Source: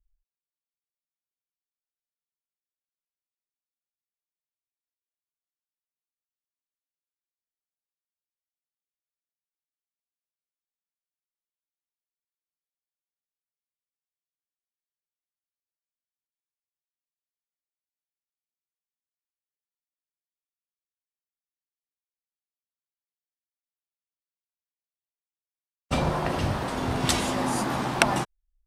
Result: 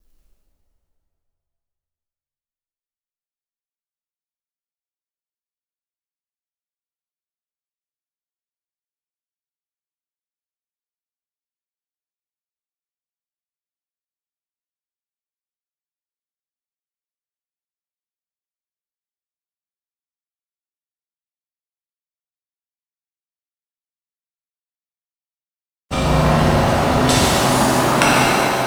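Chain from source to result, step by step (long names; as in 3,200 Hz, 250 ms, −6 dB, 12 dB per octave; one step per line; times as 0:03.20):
mu-law and A-law mismatch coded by mu
on a send: feedback echo with a band-pass in the loop 146 ms, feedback 72%, band-pass 610 Hz, level −3.5 dB
on the sum: reverb with rising layers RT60 2.4 s, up +7 semitones, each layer −8 dB, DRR −7 dB
level +1 dB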